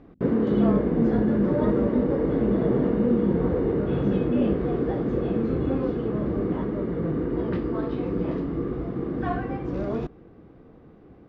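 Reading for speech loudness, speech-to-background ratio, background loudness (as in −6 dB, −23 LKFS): −28.5 LKFS, −2.5 dB, −26.0 LKFS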